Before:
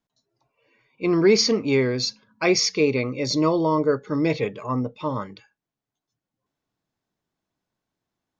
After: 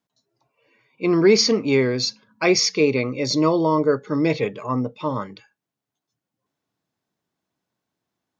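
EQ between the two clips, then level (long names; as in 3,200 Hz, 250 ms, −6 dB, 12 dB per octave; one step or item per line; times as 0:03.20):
high-pass filter 96 Hz
+2.0 dB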